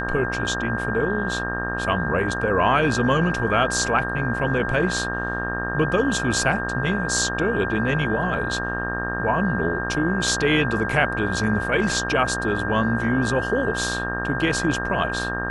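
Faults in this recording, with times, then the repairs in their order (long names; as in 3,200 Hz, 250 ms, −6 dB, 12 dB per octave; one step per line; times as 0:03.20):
mains buzz 60 Hz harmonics 30 −29 dBFS
whistle 1,600 Hz −27 dBFS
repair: hum removal 60 Hz, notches 30
notch filter 1,600 Hz, Q 30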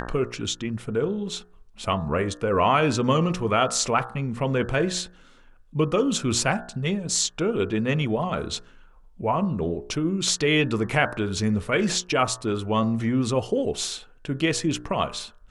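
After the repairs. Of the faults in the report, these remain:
none of them is left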